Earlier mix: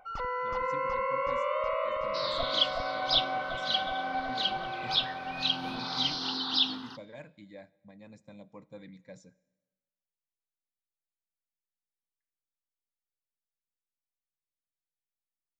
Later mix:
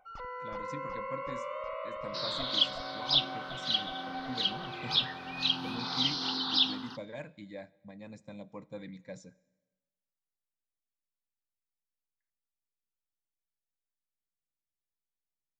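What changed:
speech +4.0 dB
first sound −8.0 dB

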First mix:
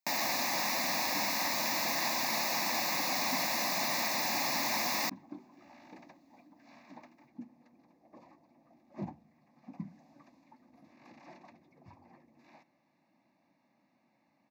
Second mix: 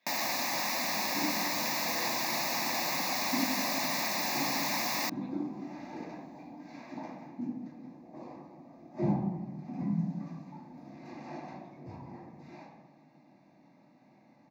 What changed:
speech: unmuted
reverb: on, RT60 1.2 s

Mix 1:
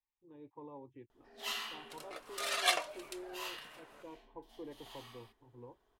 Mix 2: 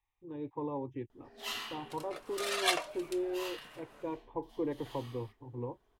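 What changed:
speech +11.0 dB
master: add low-shelf EQ 260 Hz +5.5 dB

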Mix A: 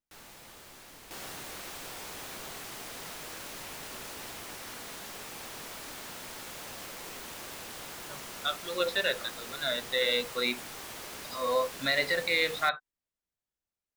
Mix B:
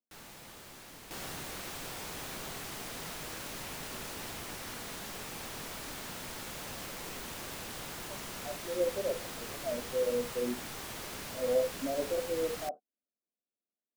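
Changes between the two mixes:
speech: add Chebyshev band-pass filter 210–710 Hz, order 4
second sound: add low-shelf EQ 78 Hz +8 dB
master: add parametric band 160 Hz +4 dB 1.9 octaves

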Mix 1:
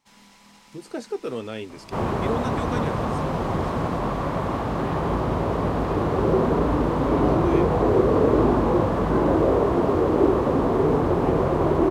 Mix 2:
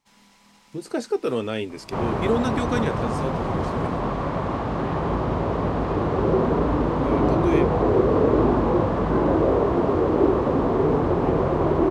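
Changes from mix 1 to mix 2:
speech +5.5 dB
first sound −3.5 dB
second sound: add high-frequency loss of the air 66 metres

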